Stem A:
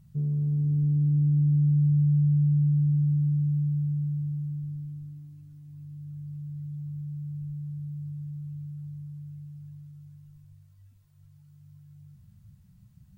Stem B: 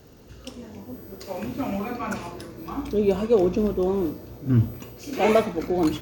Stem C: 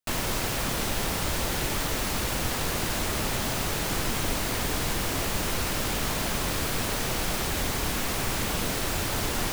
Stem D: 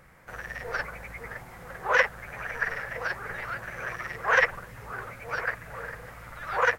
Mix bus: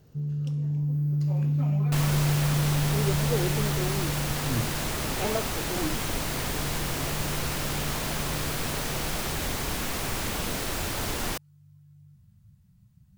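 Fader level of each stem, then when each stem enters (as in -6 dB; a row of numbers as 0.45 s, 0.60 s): -3.0 dB, -11.0 dB, -2.0 dB, mute; 0.00 s, 0.00 s, 1.85 s, mute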